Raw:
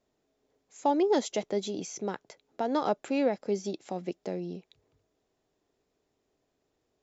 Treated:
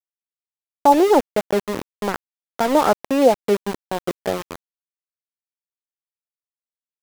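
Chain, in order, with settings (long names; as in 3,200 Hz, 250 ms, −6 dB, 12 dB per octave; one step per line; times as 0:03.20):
auto-filter low-pass sine 3.9 Hz 730–1,600 Hz
far-end echo of a speakerphone 100 ms, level −26 dB
centre clipping without the shift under −30 dBFS
level +9 dB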